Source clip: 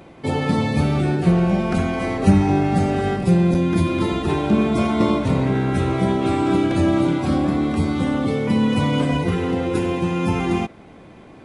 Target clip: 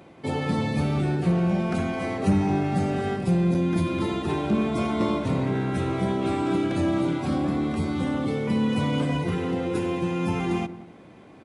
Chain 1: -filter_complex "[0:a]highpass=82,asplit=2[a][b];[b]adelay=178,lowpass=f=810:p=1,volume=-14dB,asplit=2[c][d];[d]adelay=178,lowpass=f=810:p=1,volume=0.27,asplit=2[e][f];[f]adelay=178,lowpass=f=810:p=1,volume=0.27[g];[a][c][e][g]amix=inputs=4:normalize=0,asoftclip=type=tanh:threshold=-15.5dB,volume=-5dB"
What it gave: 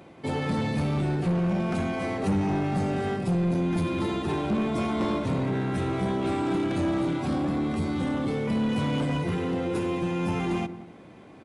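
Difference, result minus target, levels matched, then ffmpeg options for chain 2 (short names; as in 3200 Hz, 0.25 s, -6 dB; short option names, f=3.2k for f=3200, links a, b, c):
soft clip: distortion +11 dB
-filter_complex "[0:a]highpass=82,asplit=2[a][b];[b]adelay=178,lowpass=f=810:p=1,volume=-14dB,asplit=2[c][d];[d]adelay=178,lowpass=f=810:p=1,volume=0.27,asplit=2[e][f];[f]adelay=178,lowpass=f=810:p=1,volume=0.27[g];[a][c][e][g]amix=inputs=4:normalize=0,asoftclip=type=tanh:threshold=-7dB,volume=-5dB"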